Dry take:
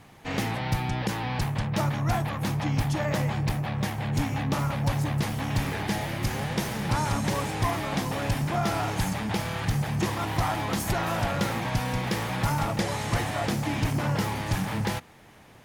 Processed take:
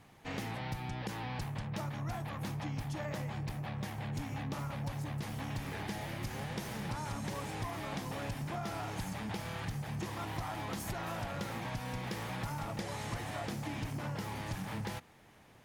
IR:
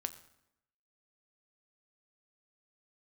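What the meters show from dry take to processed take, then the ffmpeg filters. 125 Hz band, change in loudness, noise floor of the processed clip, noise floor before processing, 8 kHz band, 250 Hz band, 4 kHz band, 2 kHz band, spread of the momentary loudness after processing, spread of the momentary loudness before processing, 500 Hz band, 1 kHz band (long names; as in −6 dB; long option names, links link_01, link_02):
−11.5 dB, −11.5 dB, −59 dBFS, −51 dBFS, −11.5 dB, −11.5 dB, −11.5 dB, −11.0 dB, 1 LU, 3 LU, −11.5 dB, −11.5 dB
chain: -af "acompressor=threshold=-27dB:ratio=6,volume=-8dB"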